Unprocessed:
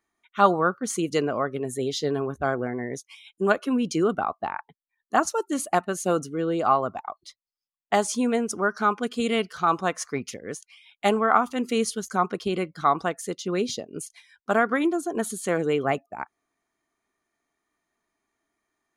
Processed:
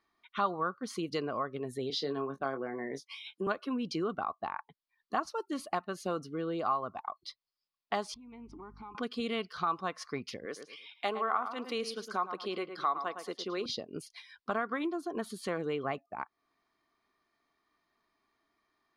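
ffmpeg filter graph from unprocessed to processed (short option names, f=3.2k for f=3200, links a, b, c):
-filter_complex "[0:a]asettb=1/sr,asplit=3[a][b][c];[a]atrim=end=1.904[d];[b]atrim=start=1.9:end=3.47,asetpts=PTS-STARTPTS,afade=t=in:d=0.004:c=qsin,afade=t=out:st=1.566:d=0.004:c=qsin,highpass=f=160:w=0.5412,highpass=f=160:w=1.3066,asplit=2[e][f];[f]adelay=22,volume=-8dB[g];[e][g]amix=inputs=2:normalize=0,atrim=end_sample=69237[h];[c]atrim=start=3.466[i];[d][h]acrossfade=d=0.004:c1=hsin:c2=qsin[j];[j][i]acrossfade=d=0.004:c1=qsin:c2=hsin,asettb=1/sr,asplit=3[k][l][m];[k]atrim=end=8.144[n];[l]atrim=start=8.14:end=8.95,asetpts=PTS-STARTPTS,afade=t=in:d=0.004:c=qsin,afade=t=out:st=0.806:d=0.004:c=qsin,asplit=3[o][p][q];[o]bandpass=f=300:t=q:w=8,volume=0dB[r];[p]bandpass=f=870:t=q:w=8,volume=-6dB[s];[q]bandpass=f=2.24k:t=q:w=8,volume=-9dB[t];[r][s][t]amix=inputs=3:normalize=0,aeval=exprs='val(0)+0.00224*(sin(2*PI*50*n/s)+sin(2*PI*2*50*n/s)/2+sin(2*PI*3*50*n/s)/3+sin(2*PI*4*50*n/s)/4+sin(2*PI*5*50*n/s)/5)':c=same,acompressor=threshold=-44dB:ratio=10:attack=3.2:release=140:knee=1:detection=peak[u];[m]atrim=start=8.946[v];[n][u]acrossfade=d=0.004:c1=hsin:c2=qsin[w];[w][v]acrossfade=d=0.004:c1=qsin:c2=hsin,asettb=1/sr,asplit=3[x][y][z];[x]atrim=end=10.454[aa];[y]atrim=start=10.45:end=13.66,asetpts=PTS-STARTPTS,afade=t=in:d=0.004:c=qsin,afade=t=out:st=3.206:d=0.004:c=qsin,highpass=320,asplit=2[ab][ac];[ac]adelay=109,lowpass=f=2.3k:p=1,volume=-10dB,asplit=2[ad][ae];[ae]adelay=109,lowpass=f=2.3k:p=1,volume=0.26,asplit=2[af][ag];[ag]adelay=109,lowpass=f=2.3k:p=1,volume=0.26[ah];[ab][ad][af][ah]amix=inputs=4:normalize=0,atrim=end_sample=141561[ai];[z]atrim=start=13.656[aj];[aa][ai]acrossfade=d=0.004:c1=hsin:c2=qsin[ak];[ak][aj]acrossfade=d=0.004:c1=qsin:c2=hsin,equalizer=f=1.1k:w=5.3:g=7.5,acompressor=threshold=-40dB:ratio=2,highshelf=f=5.8k:t=q:w=3:g=-7"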